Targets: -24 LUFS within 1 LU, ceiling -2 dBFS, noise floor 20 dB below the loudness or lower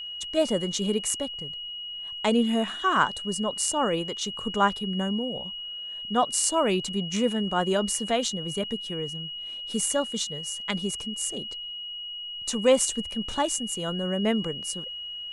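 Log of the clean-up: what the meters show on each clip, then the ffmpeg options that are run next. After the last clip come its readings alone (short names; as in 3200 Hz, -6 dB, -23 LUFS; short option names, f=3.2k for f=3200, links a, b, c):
steady tone 2900 Hz; tone level -34 dBFS; loudness -27.0 LUFS; peak -7.0 dBFS; loudness target -24.0 LUFS
-> -af "bandreject=f=2.9k:w=30"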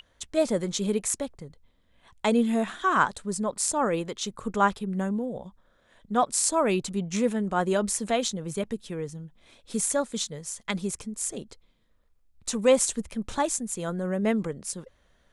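steady tone none; loudness -27.5 LUFS; peak -7.5 dBFS; loudness target -24.0 LUFS
-> -af "volume=3.5dB"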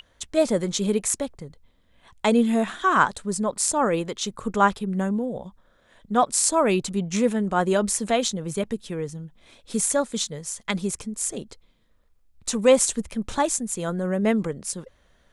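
loudness -24.0 LUFS; peak -4.0 dBFS; noise floor -62 dBFS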